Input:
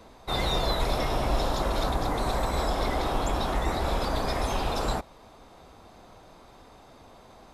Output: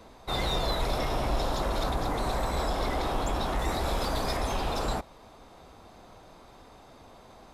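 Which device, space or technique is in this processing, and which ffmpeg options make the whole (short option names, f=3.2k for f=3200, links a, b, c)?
parallel distortion: -filter_complex "[0:a]asplit=2[a][b];[b]asoftclip=type=hard:threshold=-30dB,volume=-5.5dB[c];[a][c]amix=inputs=2:normalize=0,asettb=1/sr,asplit=3[d][e][f];[d]atrim=end=3.594[g];[e]atrim=start=3.59:end=4.37,asetpts=PTS-STARTPTS,afade=t=in:d=0.004:c=qsin,afade=t=out:st=0.776:d=0.004:c=qsin,highshelf=f=5k:g=6[h];[f]atrim=start=4.366[i];[g][h]acrossfade=d=0.004:c1=hsin:c2=qsin[j];[j][i]acrossfade=d=0.004:c1=qsin:c2=hsin,volume=-4dB"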